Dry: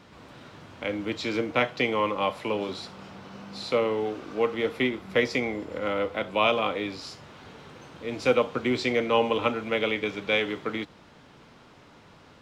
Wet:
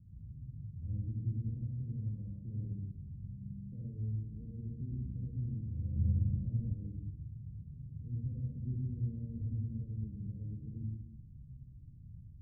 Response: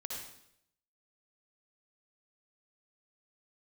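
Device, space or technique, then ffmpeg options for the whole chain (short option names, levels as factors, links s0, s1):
club heard from the street: -filter_complex "[0:a]alimiter=limit=0.0944:level=0:latency=1,lowpass=f=120:w=0.5412,lowpass=f=120:w=1.3066[s0];[1:a]atrim=start_sample=2205[s1];[s0][s1]afir=irnorm=-1:irlink=0,asettb=1/sr,asplit=3[s2][s3][s4];[s2]atrim=end=5.964[s5];[s3]atrim=start=5.96:end=6.74,asetpts=PTS-STARTPTS,afade=t=in:d=0.004:c=qsin,afade=t=out:st=0.776:d=0.004:c=qsin,tiltshelf=f=680:g=8.5[s6];[s4]atrim=start=6.736[s7];[s5][s6]acrossfade=d=0.004:c1=hsin:c2=qsin[s8];[s8][s7]acrossfade=d=0.004:c1=qsin:c2=hsin,volume=4.22"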